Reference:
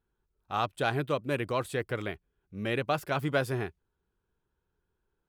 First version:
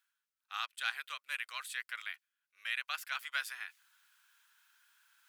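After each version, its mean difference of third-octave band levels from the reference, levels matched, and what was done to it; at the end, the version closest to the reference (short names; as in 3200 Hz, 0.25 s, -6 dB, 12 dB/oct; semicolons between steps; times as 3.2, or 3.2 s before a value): 17.5 dB: HPF 1500 Hz 24 dB/oct; reverse; upward compressor, threshold -50 dBFS; reverse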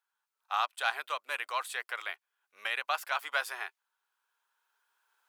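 13.5 dB: recorder AGC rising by 6.7 dB/s; HPF 870 Hz 24 dB/oct; gain +2 dB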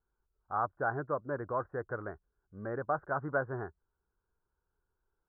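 10.0 dB: steep low-pass 1600 Hz 72 dB/oct; bell 190 Hz -9 dB 2.7 oct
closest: third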